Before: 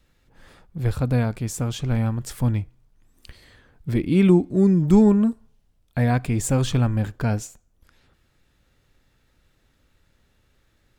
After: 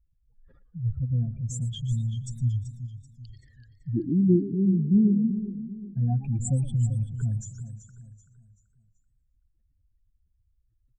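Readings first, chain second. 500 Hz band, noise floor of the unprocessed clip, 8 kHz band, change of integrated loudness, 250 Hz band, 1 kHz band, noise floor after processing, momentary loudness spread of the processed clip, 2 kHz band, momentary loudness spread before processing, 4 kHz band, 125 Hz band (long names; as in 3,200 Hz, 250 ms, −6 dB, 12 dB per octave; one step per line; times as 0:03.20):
−11.0 dB, −65 dBFS, −6.5 dB, −5.0 dB, −5.0 dB, −18.5 dB, −70 dBFS, 19 LU, below −25 dB, 13 LU, can't be measured, −3.5 dB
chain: expanding power law on the bin magnitudes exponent 3.2
repeating echo 383 ms, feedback 38%, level −12 dB
feedback echo with a swinging delay time 117 ms, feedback 53%, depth 211 cents, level −16 dB
level −4.5 dB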